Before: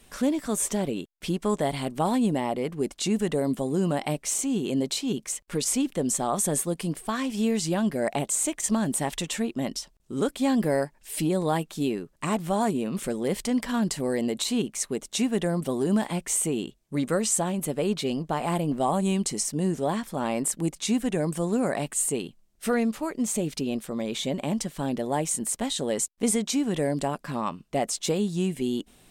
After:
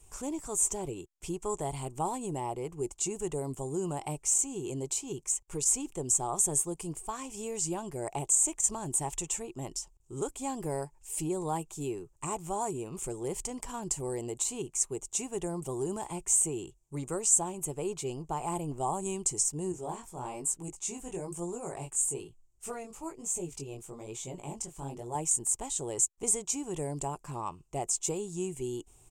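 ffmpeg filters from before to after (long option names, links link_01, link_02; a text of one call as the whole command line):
ffmpeg -i in.wav -filter_complex "[0:a]asettb=1/sr,asplit=3[link_01][link_02][link_03];[link_01]atrim=end=19.724[link_04];[link_02]atrim=start=19.72:end=25.15,asetpts=PTS-STARTPTS,afade=type=in:duration=0.004:curve=qsin,afade=type=out:start_time=5.426:duration=0.004:curve=qsin,flanger=delay=16.5:depth=7.2:speed=1.1[link_05];[link_03]atrim=start=25.146[link_06];[link_04][link_05]acrossfade=duration=0.004:curve1=hsin:curve2=qsin[link_07];[link_07][link_06]acrossfade=duration=0.004:curve1=qsin:curve2=hsin,firequalizer=gain_entry='entry(110,0);entry(220,-22);entry(360,-5);entry(560,-15);entry(860,-4);entry(1700,-20);entry(2500,-11);entry(3900,-19);entry(7100,3);entry(11000,-9)':delay=0.05:min_phase=1,volume=1.5dB" out.wav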